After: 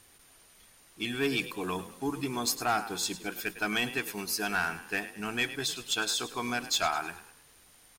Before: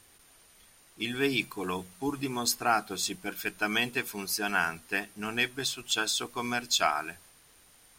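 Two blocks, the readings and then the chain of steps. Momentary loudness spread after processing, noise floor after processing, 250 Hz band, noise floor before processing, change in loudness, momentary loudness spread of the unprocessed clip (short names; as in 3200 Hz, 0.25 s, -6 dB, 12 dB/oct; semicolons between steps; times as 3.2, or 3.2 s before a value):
7 LU, -59 dBFS, -0.5 dB, -60 dBFS, -1.5 dB, 8 LU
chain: frequency-shifting echo 0.104 s, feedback 42%, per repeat +39 Hz, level -15 dB; soft clip -19.5 dBFS, distortion -16 dB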